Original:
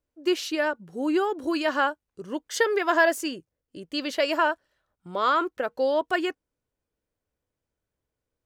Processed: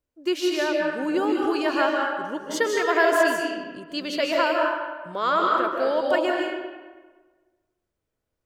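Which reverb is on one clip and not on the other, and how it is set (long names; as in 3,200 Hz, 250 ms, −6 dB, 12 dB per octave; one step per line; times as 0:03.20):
comb and all-pass reverb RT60 1.4 s, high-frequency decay 0.65×, pre-delay 110 ms, DRR −1 dB
level −1 dB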